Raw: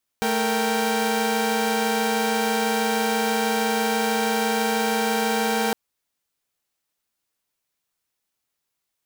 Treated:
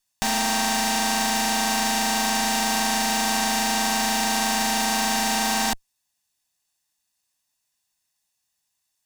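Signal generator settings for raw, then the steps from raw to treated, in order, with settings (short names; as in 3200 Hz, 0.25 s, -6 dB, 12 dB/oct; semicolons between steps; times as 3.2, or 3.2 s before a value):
chord A3/A#4/G5 saw, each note -22.5 dBFS 5.51 s
minimum comb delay 1.1 ms; bell 6800 Hz +9 dB 1.9 oct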